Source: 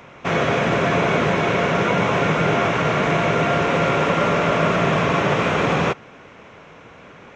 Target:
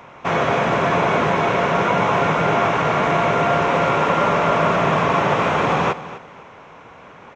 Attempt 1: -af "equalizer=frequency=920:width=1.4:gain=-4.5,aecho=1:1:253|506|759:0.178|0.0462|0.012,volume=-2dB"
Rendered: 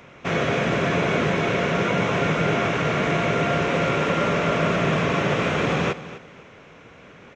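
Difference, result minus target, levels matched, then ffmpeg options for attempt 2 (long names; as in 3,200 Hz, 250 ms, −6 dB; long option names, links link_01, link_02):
1,000 Hz band −4.5 dB
-af "equalizer=frequency=920:width=1.4:gain=7.5,aecho=1:1:253|506|759:0.178|0.0462|0.012,volume=-2dB"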